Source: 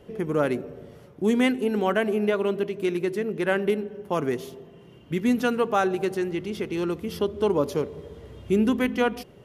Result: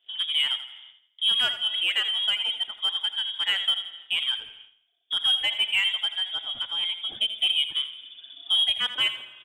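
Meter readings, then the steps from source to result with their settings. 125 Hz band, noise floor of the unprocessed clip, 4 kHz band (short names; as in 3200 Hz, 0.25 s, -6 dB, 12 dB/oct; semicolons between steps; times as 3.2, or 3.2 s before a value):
under -25 dB, -50 dBFS, +20.5 dB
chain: inverted band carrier 3500 Hz; reverb removal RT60 1.8 s; low shelf 400 Hz -8.5 dB; in parallel at -3.5 dB: soft clip -24 dBFS, distortion -10 dB; on the sum: spring tank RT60 2.3 s, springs 30/35 ms, chirp 65 ms, DRR 15 dB; gate -44 dBFS, range -21 dB; on a send: feedback echo 83 ms, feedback 37%, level -12 dB; on the sum: gain -3.5 dB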